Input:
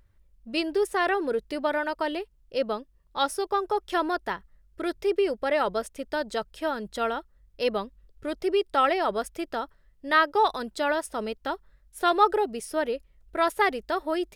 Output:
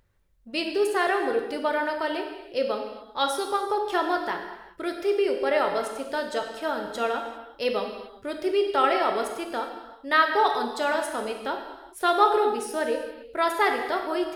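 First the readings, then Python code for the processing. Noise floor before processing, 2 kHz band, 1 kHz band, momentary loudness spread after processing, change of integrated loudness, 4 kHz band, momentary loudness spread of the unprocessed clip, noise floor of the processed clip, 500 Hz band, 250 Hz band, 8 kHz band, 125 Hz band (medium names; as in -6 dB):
-62 dBFS, +1.5 dB, +1.5 dB, 11 LU, +1.5 dB, +1.5 dB, 12 LU, -51 dBFS, +1.5 dB, 0.0 dB, +2.0 dB, no reading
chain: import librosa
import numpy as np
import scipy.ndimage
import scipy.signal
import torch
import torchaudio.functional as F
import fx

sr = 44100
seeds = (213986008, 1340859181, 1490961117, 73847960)

y = fx.low_shelf(x, sr, hz=130.0, db=-9.5)
y = fx.rev_gated(y, sr, seeds[0], gate_ms=430, shape='falling', drr_db=3.0)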